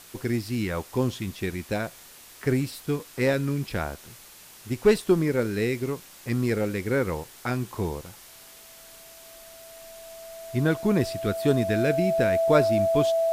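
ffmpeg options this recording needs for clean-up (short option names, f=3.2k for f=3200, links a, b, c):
-af "bandreject=f=660:w=30,afwtdn=0.0045"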